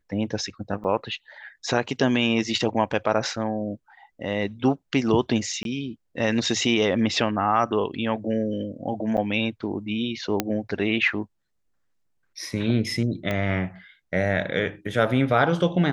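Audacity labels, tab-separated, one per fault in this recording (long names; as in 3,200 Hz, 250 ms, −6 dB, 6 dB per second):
0.840000	0.850000	drop-out 7 ms
5.630000	5.650000	drop-out 22 ms
9.170000	9.180000	drop-out 8.1 ms
10.400000	10.400000	click −6 dBFS
13.310000	13.310000	click −14 dBFS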